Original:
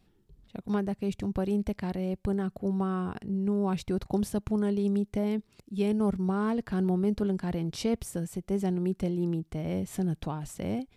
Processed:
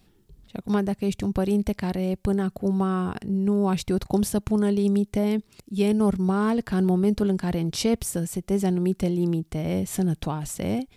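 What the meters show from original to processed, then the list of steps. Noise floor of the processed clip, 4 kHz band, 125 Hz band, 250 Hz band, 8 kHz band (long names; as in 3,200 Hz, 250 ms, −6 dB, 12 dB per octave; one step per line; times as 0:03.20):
−61 dBFS, +8.5 dB, +5.5 dB, +5.5 dB, +11.0 dB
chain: high-shelf EQ 4,000 Hz +6.5 dB
level +5.5 dB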